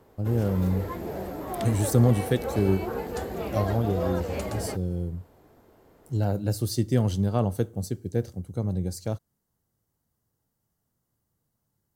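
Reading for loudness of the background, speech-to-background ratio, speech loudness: −33.5 LKFS, 6.0 dB, −27.5 LKFS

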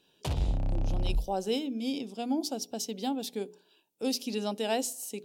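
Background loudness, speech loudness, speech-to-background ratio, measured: −33.0 LKFS, −33.5 LKFS, −0.5 dB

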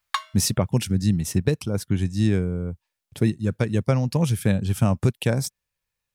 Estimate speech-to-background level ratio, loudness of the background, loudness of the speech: 7.5 dB, −31.0 LKFS, −23.5 LKFS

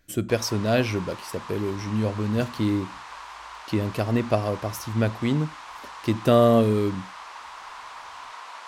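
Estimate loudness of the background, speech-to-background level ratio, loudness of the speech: −40.0 LKFS, 15.5 dB, −24.5 LKFS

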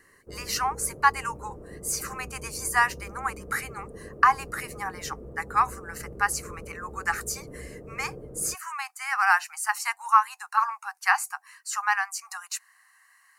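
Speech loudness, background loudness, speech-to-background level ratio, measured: −27.0 LKFS, −43.5 LKFS, 16.5 dB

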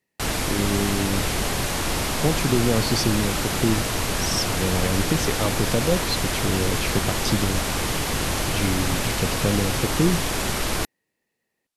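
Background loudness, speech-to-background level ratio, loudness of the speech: −24.5 LKFS, −1.5 dB, −26.0 LKFS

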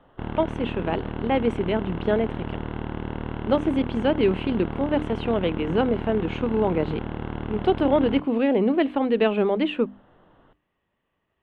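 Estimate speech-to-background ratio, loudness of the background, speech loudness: 8.0 dB, −32.5 LKFS, −24.5 LKFS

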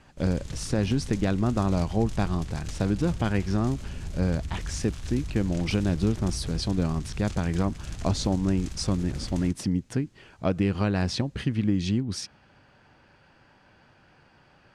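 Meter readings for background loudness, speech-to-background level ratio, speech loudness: −38.5 LKFS, 10.5 dB, −28.0 LKFS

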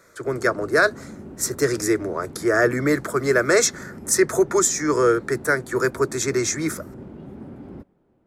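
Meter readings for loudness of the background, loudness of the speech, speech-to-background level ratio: −40.0 LKFS, −21.0 LKFS, 19.0 dB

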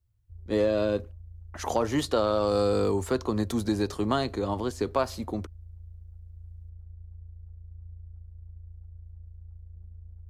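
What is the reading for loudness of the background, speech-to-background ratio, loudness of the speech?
−47.0 LKFS, 19.0 dB, −28.0 LKFS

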